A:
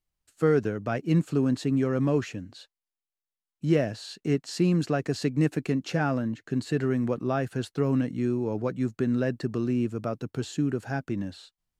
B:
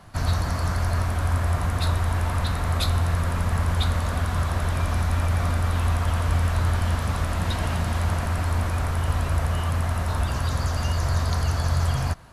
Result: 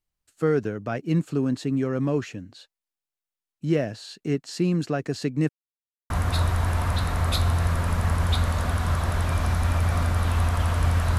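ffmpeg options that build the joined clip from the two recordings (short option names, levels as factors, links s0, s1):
-filter_complex "[0:a]apad=whole_dur=11.18,atrim=end=11.18,asplit=2[s0][s1];[s0]atrim=end=5.49,asetpts=PTS-STARTPTS,afade=t=out:st=5.486:d=0.004:c=hsin[s2];[s1]atrim=start=5.49:end=6.1,asetpts=PTS-STARTPTS,volume=0[s3];[1:a]atrim=start=1.58:end=6.66,asetpts=PTS-STARTPTS,afade=t=in:d=0.004:c=hsin[s4];[s2][s3][s4]concat=n=3:v=0:a=1"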